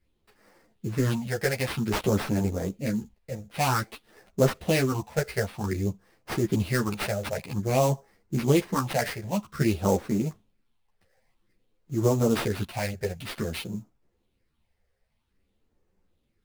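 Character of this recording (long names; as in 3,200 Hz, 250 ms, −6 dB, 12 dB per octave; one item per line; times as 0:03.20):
phaser sweep stages 6, 0.52 Hz, lowest notch 270–3,500 Hz
aliases and images of a low sample rate 6,900 Hz, jitter 20%
a shimmering, thickened sound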